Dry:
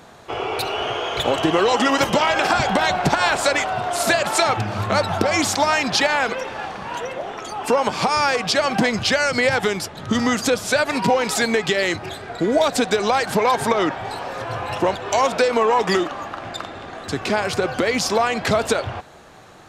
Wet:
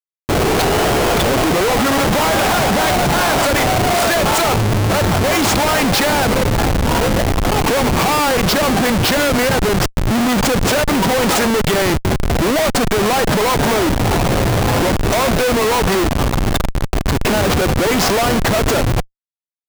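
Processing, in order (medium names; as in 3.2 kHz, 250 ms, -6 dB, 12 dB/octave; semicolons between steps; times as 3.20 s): in parallel at +2.5 dB: compression 6:1, threshold -28 dBFS, peak gain reduction 14.5 dB; on the sum: Schmitt trigger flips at -20 dBFS; trim +3.5 dB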